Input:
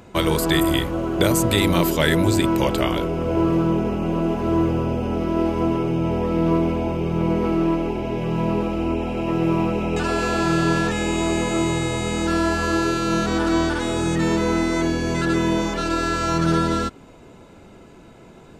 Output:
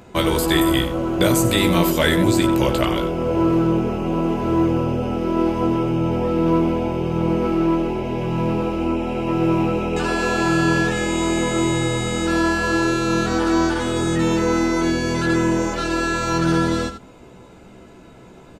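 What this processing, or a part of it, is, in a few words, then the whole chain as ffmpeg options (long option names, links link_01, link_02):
slapback doubling: -filter_complex "[0:a]asplit=3[link_01][link_02][link_03];[link_02]adelay=16,volume=-5dB[link_04];[link_03]adelay=91,volume=-11dB[link_05];[link_01][link_04][link_05]amix=inputs=3:normalize=0"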